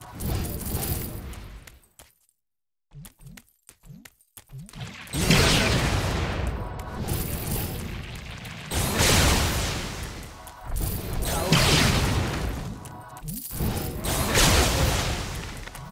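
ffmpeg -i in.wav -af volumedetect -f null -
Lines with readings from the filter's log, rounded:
mean_volume: -26.5 dB
max_volume: -6.1 dB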